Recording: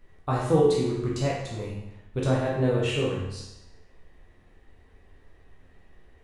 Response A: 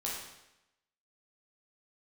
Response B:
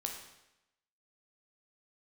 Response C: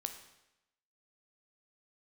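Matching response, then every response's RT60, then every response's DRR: A; 0.90, 0.90, 0.90 s; -5.5, 1.5, 6.0 dB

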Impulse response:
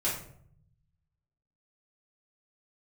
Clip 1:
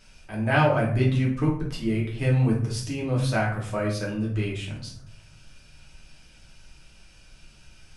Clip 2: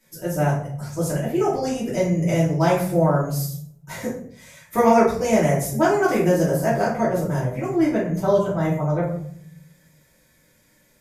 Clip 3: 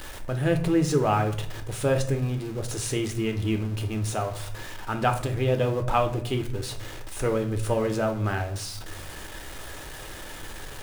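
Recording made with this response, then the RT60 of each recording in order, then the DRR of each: 2; 0.65, 0.65, 0.65 s; -4.5, -8.5, 5.0 dB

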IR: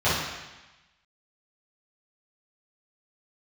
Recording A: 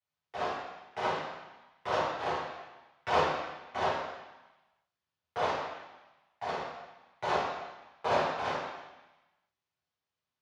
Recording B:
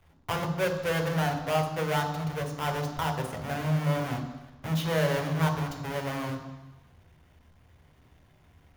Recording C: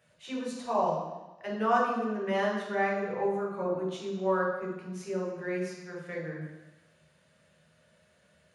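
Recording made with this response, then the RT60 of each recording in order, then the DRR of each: A; 1.1, 1.1, 1.1 s; -12.5, 5.5, -3.0 dB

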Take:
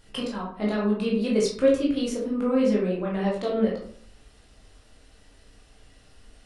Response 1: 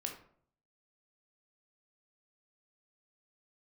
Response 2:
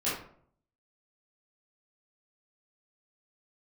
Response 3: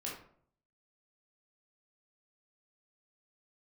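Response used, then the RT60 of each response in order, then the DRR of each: 3; 0.60, 0.60, 0.60 s; 2.0, -11.0, -4.5 dB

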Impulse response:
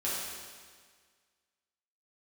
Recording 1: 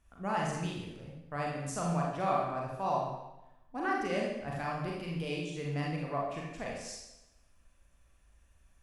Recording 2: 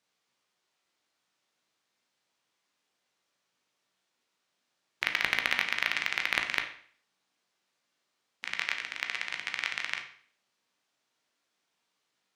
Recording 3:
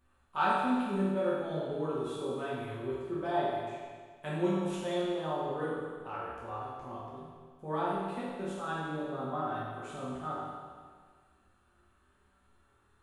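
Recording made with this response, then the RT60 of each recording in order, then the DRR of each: 3; 0.95, 0.50, 1.7 s; -3.0, 3.5, -9.0 dB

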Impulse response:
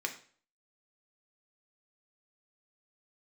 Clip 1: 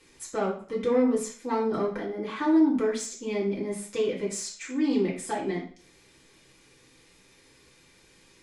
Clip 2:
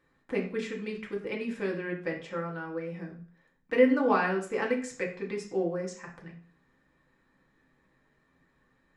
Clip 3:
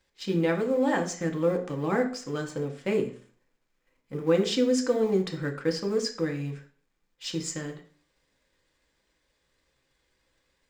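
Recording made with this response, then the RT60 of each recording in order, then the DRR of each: 3; 0.45, 0.45, 0.45 s; -6.5, -1.5, 3.0 dB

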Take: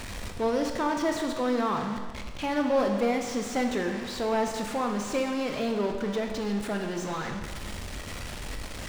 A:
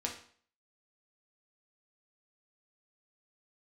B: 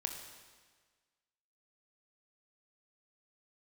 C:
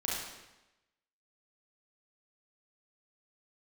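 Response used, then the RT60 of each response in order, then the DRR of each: B; 0.50, 1.5, 1.0 s; -0.5, 3.5, -6.0 dB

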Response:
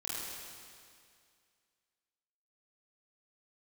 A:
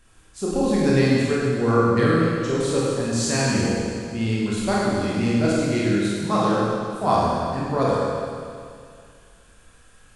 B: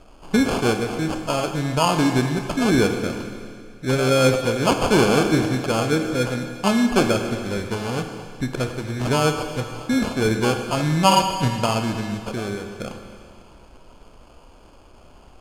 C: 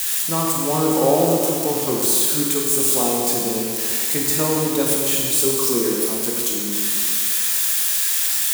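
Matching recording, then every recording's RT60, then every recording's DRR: A; 2.2, 2.2, 2.2 s; -7.0, 5.5, -2.5 dB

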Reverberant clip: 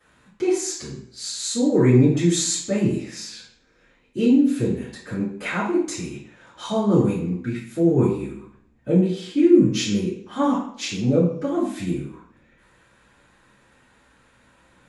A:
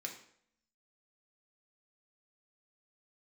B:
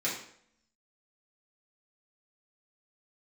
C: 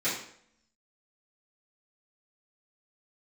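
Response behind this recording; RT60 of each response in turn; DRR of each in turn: C; 0.65, 0.65, 0.65 s; 1.0, -7.5, -14.0 dB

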